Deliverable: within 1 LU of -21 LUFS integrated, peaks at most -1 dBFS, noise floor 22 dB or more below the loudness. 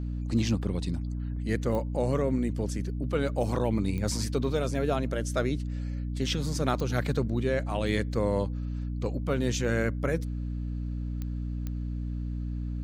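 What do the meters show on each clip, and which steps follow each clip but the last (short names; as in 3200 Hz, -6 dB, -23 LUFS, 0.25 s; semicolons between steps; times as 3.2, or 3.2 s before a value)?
clicks 5; hum 60 Hz; harmonics up to 300 Hz; hum level -30 dBFS; loudness -30.0 LUFS; peak -11.0 dBFS; loudness target -21.0 LUFS
-> de-click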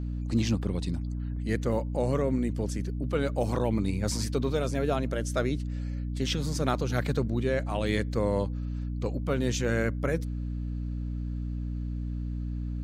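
clicks 0; hum 60 Hz; harmonics up to 300 Hz; hum level -30 dBFS
-> notches 60/120/180/240/300 Hz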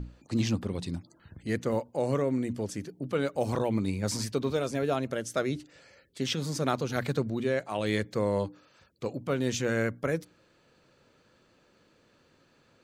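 hum none; loudness -31.0 LUFS; peak -13.0 dBFS; loudness target -21.0 LUFS
-> gain +10 dB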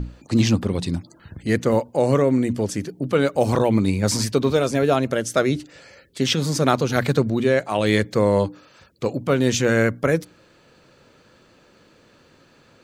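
loudness -21.0 LUFS; peak -3.0 dBFS; noise floor -55 dBFS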